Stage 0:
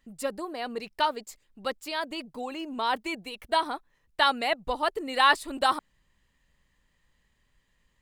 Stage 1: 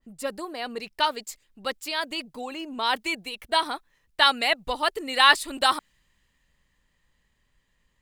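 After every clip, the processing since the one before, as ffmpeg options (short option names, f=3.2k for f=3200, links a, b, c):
-af "adynamicequalizer=threshold=0.0126:dfrequency=1500:dqfactor=0.7:tfrequency=1500:tqfactor=0.7:attack=5:release=100:ratio=0.375:range=4:mode=boostabove:tftype=highshelf"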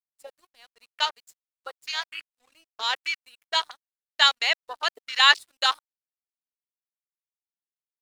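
-af "tiltshelf=f=760:g=-9.5,aeval=exprs='sgn(val(0))*max(abs(val(0))-0.0224,0)':c=same,afwtdn=0.0447,volume=-5.5dB"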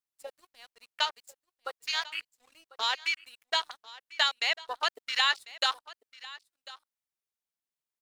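-af "acompressor=threshold=-26dB:ratio=3,aecho=1:1:1046:0.112,volume=1dB"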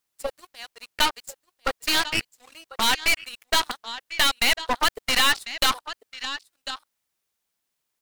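-filter_complex "[0:a]asplit=2[a][b];[b]alimiter=limit=-18.5dB:level=0:latency=1:release=163,volume=2dB[c];[a][c]amix=inputs=2:normalize=0,aeval=exprs='0.473*(cos(1*acos(clip(val(0)/0.473,-1,1)))-cos(1*PI/2))+0.075*(cos(8*acos(clip(val(0)/0.473,-1,1)))-cos(8*PI/2))':c=same,volume=19dB,asoftclip=hard,volume=-19dB,volume=6dB"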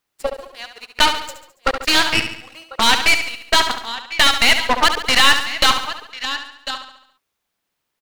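-filter_complex "[0:a]aecho=1:1:70|140|210|280|350|420:0.376|0.195|0.102|0.0528|0.0275|0.0143,asplit=2[a][b];[b]adynamicsmooth=sensitivity=5.5:basefreq=5.2k,volume=2dB[c];[a][c]amix=inputs=2:normalize=0"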